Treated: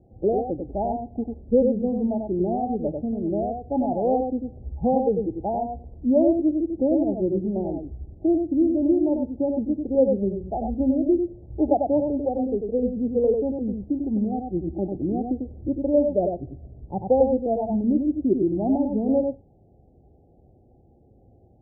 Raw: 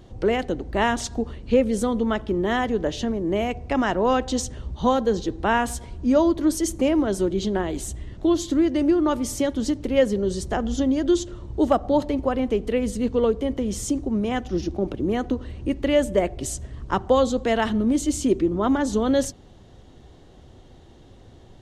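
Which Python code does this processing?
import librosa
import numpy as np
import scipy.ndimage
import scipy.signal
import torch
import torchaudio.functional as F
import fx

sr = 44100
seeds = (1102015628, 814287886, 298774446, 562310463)

p1 = scipy.signal.sosfilt(scipy.signal.butter(2, 41.0, 'highpass', fs=sr, output='sos'), x)
p2 = fx.noise_reduce_blind(p1, sr, reduce_db=7)
p3 = scipy.signal.sosfilt(scipy.signal.cheby1(8, 1.0, 830.0, 'lowpass', fs=sr, output='sos'), p2)
y = p3 + fx.echo_single(p3, sr, ms=96, db=-4.5, dry=0)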